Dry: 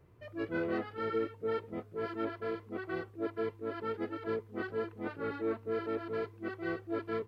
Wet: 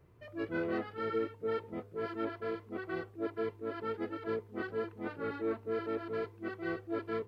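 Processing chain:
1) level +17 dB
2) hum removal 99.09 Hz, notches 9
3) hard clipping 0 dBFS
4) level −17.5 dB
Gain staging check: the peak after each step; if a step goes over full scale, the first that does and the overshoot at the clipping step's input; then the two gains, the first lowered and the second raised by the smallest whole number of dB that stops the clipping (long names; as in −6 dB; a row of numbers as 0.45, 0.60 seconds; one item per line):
−5.0, −5.0, −5.0, −22.5 dBFS
no step passes full scale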